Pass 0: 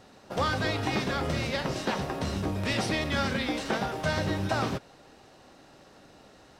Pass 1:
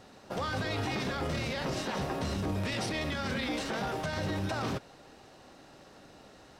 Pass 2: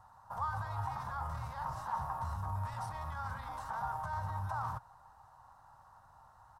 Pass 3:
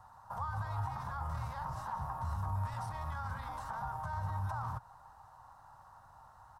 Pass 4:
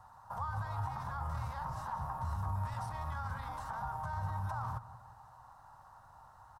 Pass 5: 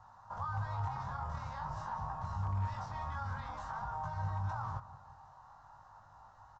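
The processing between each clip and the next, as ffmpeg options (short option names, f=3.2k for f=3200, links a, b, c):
-af "alimiter=level_in=1dB:limit=-24dB:level=0:latency=1:release=11,volume=-1dB"
-af "firequalizer=gain_entry='entry(110,0);entry(170,-14);entry(260,-25);entry(380,-28);entry(920,9);entry(2300,-23);entry(11000,-4)':delay=0.05:min_phase=1,volume=-2.5dB"
-filter_complex "[0:a]acrossover=split=340[a][b];[b]acompressor=threshold=-44dB:ratio=2[c];[a][c]amix=inputs=2:normalize=0,volume=2.5dB"
-filter_complex "[0:a]asplit=2[a][b];[b]adelay=179,lowpass=f=1.2k:p=1,volume=-14dB,asplit=2[c][d];[d]adelay=179,lowpass=f=1.2k:p=1,volume=0.46,asplit=2[e][f];[f]adelay=179,lowpass=f=1.2k:p=1,volume=0.46,asplit=2[g][h];[h]adelay=179,lowpass=f=1.2k:p=1,volume=0.46[i];[a][c][e][g][i]amix=inputs=5:normalize=0"
-af "flanger=delay=19:depth=2.7:speed=0.47,asoftclip=type=hard:threshold=-31dB,aresample=16000,aresample=44100,volume=2.5dB"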